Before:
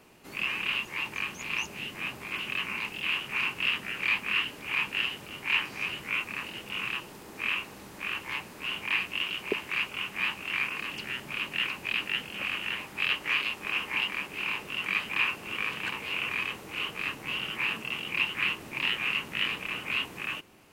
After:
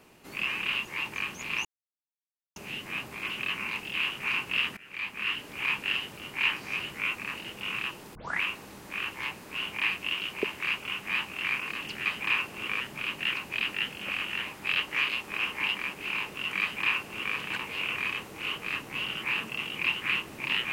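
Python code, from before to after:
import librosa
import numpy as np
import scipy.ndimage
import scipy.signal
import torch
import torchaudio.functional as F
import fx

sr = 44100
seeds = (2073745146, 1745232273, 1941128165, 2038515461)

y = fx.edit(x, sr, fx.insert_silence(at_s=1.65, length_s=0.91),
    fx.fade_in_from(start_s=3.86, length_s=0.75, floor_db=-20.0),
    fx.tape_start(start_s=7.24, length_s=0.27),
    fx.duplicate(start_s=14.94, length_s=0.76, to_s=11.14), tone=tone)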